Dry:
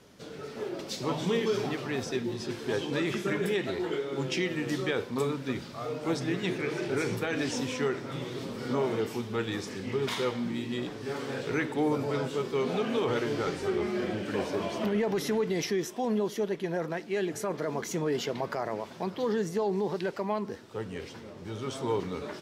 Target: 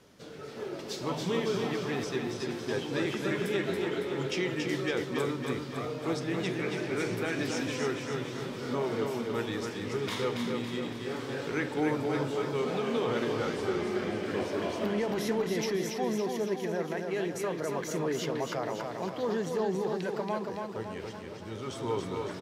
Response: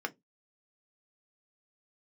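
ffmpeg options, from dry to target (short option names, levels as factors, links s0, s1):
-filter_complex "[0:a]aecho=1:1:279|558|837|1116|1395|1674|1953:0.596|0.328|0.18|0.0991|0.0545|0.03|0.0165,asplit=2[s0][s1];[1:a]atrim=start_sample=2205[s2];[s1][s2]afir=irnorm=-1:irlink=0,volume=0.0841[s3];[s0][s3]amix=inputs=2:normalize=0,volume=0.708"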